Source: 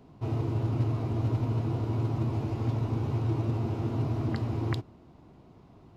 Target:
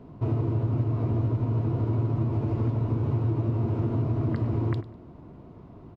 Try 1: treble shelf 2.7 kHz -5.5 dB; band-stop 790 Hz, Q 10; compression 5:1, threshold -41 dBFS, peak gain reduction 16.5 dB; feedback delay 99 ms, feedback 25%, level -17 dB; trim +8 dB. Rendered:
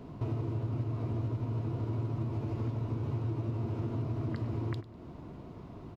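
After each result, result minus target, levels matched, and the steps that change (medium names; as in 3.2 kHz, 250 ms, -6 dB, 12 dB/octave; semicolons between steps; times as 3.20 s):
compression: peak gain reduction +8 dB; 4 kHz band +7.0 dB
change: compression 5:1, threshold -31 dBFS, peak gain reduction 8.5 dB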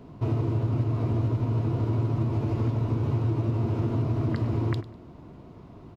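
4 kHz band +6.5 dB
change: treble shelf 2.7 kHz -16.5 dB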